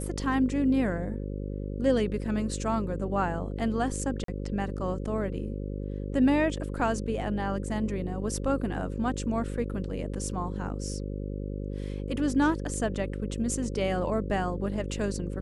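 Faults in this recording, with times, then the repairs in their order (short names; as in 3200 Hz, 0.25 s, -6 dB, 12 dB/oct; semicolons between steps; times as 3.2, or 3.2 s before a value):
buzz 50 Hz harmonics 11 -34 dBFS
4.24–4.28 gap 43 ms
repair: de-hum 50 Hz, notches 11; interpolate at 4.24, 43 ms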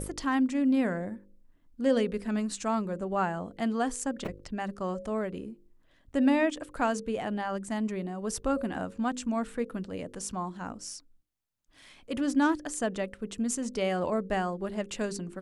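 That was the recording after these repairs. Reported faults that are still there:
none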